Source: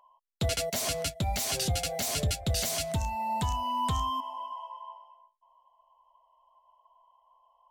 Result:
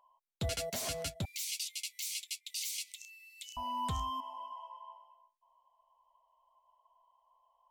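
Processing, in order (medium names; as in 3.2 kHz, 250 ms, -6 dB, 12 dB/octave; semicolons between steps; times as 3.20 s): 1.25–3.57 s: steep high-pass 2.1 kHz 96 dB/octave; trim -6.5 dB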